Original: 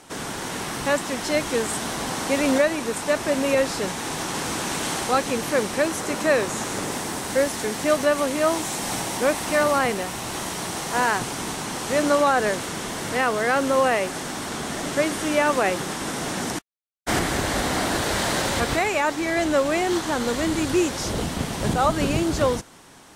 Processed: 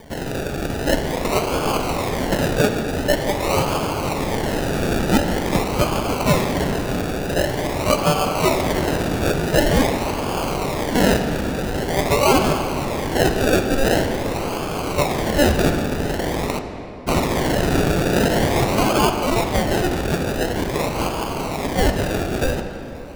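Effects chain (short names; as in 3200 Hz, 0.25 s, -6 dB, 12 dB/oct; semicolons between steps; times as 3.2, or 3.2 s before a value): HPF 1100 Hz 12 dB/oct; decimation with a swept rate 33×, swing 60% 0.46 Hz; reverb RT60 3.2 s, pre-delay 6 ms, DRR 6 dB; gain +8.5 dB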